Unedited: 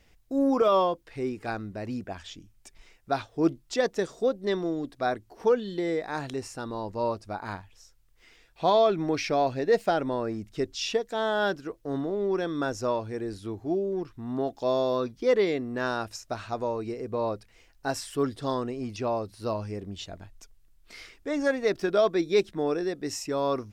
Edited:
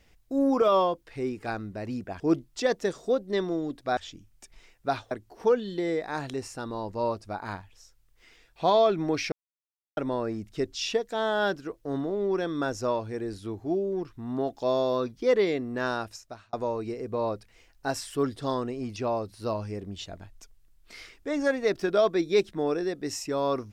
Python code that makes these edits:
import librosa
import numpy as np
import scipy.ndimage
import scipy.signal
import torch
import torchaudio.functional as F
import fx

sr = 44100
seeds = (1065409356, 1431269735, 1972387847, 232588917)

y = fx.edit(x, sr, fx.move(start_s=2.2, length_s=1.14, to_s=5.11),
    fx.silence(start_s=9.32, length_s=0.65),
    fx.fade_out_span(start_s=15.94, length_s=0.59), tone=tone)